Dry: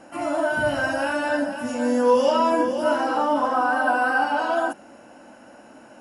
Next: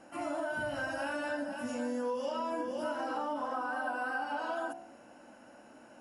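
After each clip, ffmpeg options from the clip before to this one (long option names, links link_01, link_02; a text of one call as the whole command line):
ffmpeg -i in.wav -af "bandreject=frequency=67.59:width_type=h:width=4,bandreject=frequency=135.18:width_type=h:width=4,bandreject=frequency=202.77:width_type=h:width=4,bandreject=frequency=270.36:width_type=h:width=4,bandreject=frequency=337.95:width_type=h:width=4,bandreject=frequency=405.54:width_type=h:width=4,bandreject=frequency=473.13:width_type=h:width=4,bandreject=frequency=540.72:width_type=h:width=4,bandreject=frequency=608.31:width_type=h:width=4,bandreject=frequency=675.9:width_type=h:width=4,bandreject=frequency=743.49:width_type=h:width=4,bandreject=frequency=811.08:width_type=h:width=4,bandreject=frequency=878.67:width_type=h:width=4,bandreject=frequency=946.26:width_type=h:width=4,bandreject=frequency=1013.85:width_type=h:width=4,bandreject=frequency=1081.44:width_type=h:width=4,acompressor=threshold=-24dB:ratio=6,volume=-8dB" out.wav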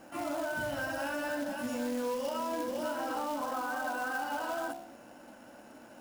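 ffmpeg -i in.wav -filter_complex "[0:a]lowshelf=frequency=180:gain=3.5,asplit=2[link_01][link_02];[link_02]alimiter=level_in=7.5dB:limit=-24dB:level=0:latency=1:release=26,volume=-7.5dB,volume=1dB[link_03];[link_01][link_03]amix=inputs=2:normalize=0,acrusher=bits=3:mode=log:mix=0:aa=0.000001,volume=-4.5dB" out.wav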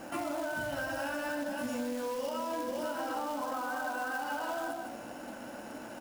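ffmpeg -i in.wav -filter_complex "[0:a]asplit=2[link_01][link_02];[link_02]aecho=0:1:153:0.299[link_03];[link_01][link_03]amix=inputs=2:normalize=0,acompressor=threshold=-42dB:ratio=4,volume=8dB" out.wav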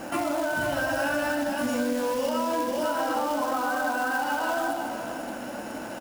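ffmpeg -i in.wav -af "aecho=1:1:496:0.335,volume=8dB" out.wav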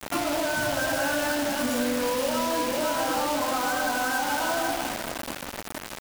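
ffmpeg -i in.wav -af "acrusher=bits=4:mix=0:aa=0.000001" out.wav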